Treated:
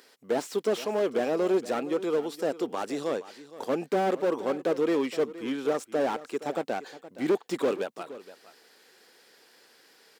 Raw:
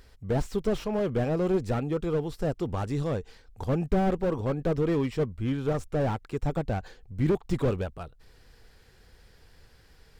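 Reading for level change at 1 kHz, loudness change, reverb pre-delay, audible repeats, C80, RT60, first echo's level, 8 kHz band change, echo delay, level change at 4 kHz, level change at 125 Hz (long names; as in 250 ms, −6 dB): +2.5 dB, 0.0 dB, no reverb audible, 1, no reverb audible, no reverb audible, −16.0 dB, can't be measured, 469 ms, +5.0 dB, −17.5 dB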